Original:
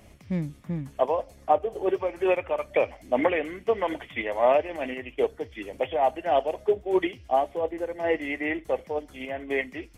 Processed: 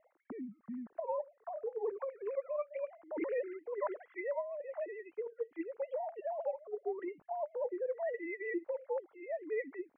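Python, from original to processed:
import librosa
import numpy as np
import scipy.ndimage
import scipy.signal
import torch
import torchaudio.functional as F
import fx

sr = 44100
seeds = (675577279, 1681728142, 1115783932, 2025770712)

y = fx.sine_speech(x, sr)
y = scipy.signal.sosfilt(scipy.signal.butter(4, 1700.0, 'lowpass', fs=sr, output='sos'), y)
y = fx.over_compress(y, sr, threshold_db=-28.0, ratio=-1.0)
y = y * librosa.db_to_amplitude(-8.0)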